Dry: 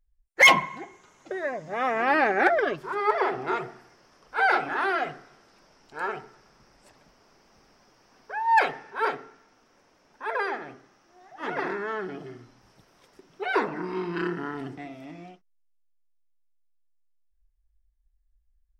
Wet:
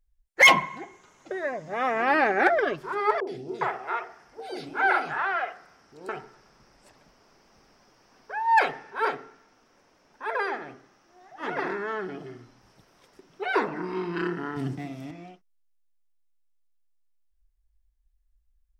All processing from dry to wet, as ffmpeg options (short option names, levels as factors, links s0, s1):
-filter_complex "[0:a]asettb=1/sr,asplit=3[s0][s1][s2];[s0]atrim=end=3.204[s3];[s1]atrim=start=3.2:end=6.09,asetpts=PTS-STARTPTS,afade=t=in:d=0.004:c=qsin,afade=t=out:st=2.886:d=0.004:c=qsin,highpass=41,acrossover=split=480|3500[s4][s5][s6];[s6]adelay=70[s7];[s5]adelay=410[s8];[s4][s8][s7]amix=inputs=3:normalize=0,atrim=end_sample=127449[s9];[s2]atrim=start=6.086[s10];[s3][s9]acrossfade=d=0.004:c1=hsin:c2=qsin[s11];[s11][s10]acrossfade=d=0.004:c1=qsin:c2=hsin,asettb=1/sr,asplit=3[s12][s13][s14];[s12]atrim=end=14.564[s15];[s13]atrim=start=14.56:end=15.11,asetpts=PTS-STARTPTS,afade=t=in:d=0.004:c=qsin,afade=t=out:st=0.546:d=0.004:c=qsin,highpass=f=100:w=0.5412,highpass=f=100:w=1.3066,bass=f=250:g=13,treble=f=4000:g=9,aeval=exprs='sgn(val(0))*max(abs(val(0))-0.00237,0)':c=same[s16];[s14]atrim=start=15.106[s17];[s15][s16]acrossfade=d=0.004:c1=hsin:c2=qsin[s18];[s18][s17]acrossfade=d=0.004:c1=qsin:c2=hsin"